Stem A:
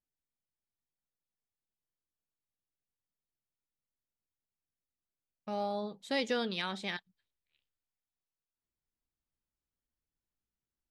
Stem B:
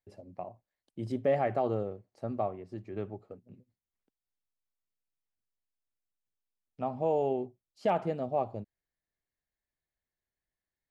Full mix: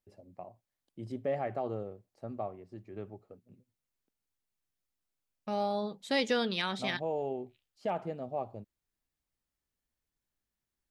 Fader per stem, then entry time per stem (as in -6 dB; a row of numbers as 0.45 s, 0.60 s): +3.0 dB, -5.5 dB; 0.00 s, 0.00 s